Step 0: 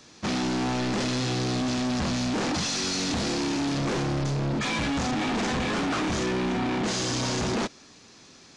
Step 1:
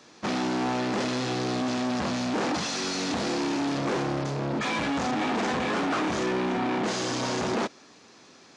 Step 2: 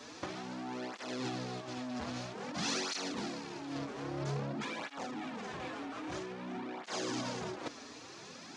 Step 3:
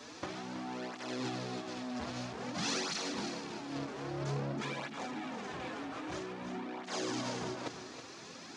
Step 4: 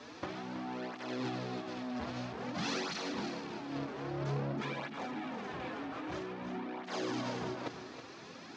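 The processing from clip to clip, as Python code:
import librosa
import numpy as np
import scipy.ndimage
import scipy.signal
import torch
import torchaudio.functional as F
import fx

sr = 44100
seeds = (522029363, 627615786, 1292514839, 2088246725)

y1 = fx.highpass(x, sr, hz=400.0, slope=6)
y1 = fx.high_shelf(y1, sr, hz=2100.0, db=-9.5)
y1 = y1 * librosa.db_to_amplitude(4.5)
y2 = fx.over_compress(y1, sr, threshold_db=-33.0, ratio=-0.5)
y2 = fx.flanger_cancel(y2, sr, hz=0.51, depth_ms=6.0)
y2 = y2 * librosa.db_to_amplitude(-1.5)
y3 = y2 + 10.0 ** (-9.0 / 20.0) * np.pad(y2, (int(324 * sr / 1000.0), 0))[:len(y2)]
y4 = fx.air_absorb(y3, sr, metres=130.0)
y4 = y4 * librosa.db_to_amplitude(1.0)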